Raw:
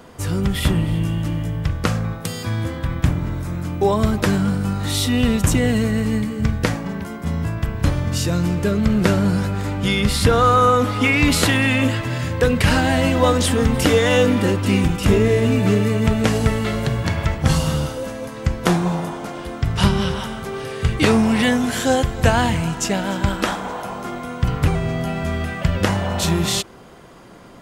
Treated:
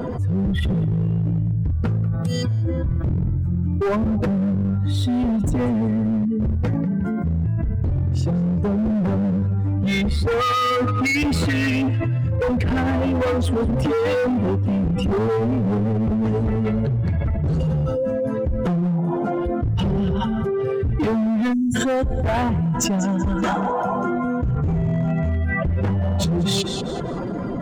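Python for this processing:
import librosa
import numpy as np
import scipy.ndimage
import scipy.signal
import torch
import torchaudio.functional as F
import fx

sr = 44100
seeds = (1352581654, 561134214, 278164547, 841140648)

y = fx.spec_expand(x, sr, power=2.0)
y = fx.notch(y, sr, hz=1100.0, q=12.0)
y = fx.echo_thinned(y, sr, ms=190, feedback_pct=25, hz=200.0, wet_db=-21.5)
y = np.clip(10.0 ** (18.5 / 20.0) * y, -1.0, 1.0) / 10.0 ** (18.5 / 20.0)
y = fx.spec_erase(y, sr, start_s=21.53, length_s=0.22, low_hz=330.0, high_hz=5700.0)
y = fx.peak_eq(y, sr, hz=6800.0, db=11.5, octaves=0.26, at=(22.98, 25.31))
y = fx.env_flatten(y, sr, amount_pct=70)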